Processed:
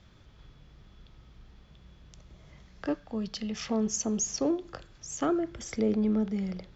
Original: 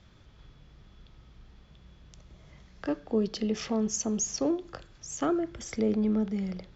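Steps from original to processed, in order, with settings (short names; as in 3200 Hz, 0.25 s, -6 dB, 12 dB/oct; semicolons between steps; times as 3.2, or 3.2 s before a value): 2.95–3.69 bell 380 Hz -13.5 dB 1.1 oct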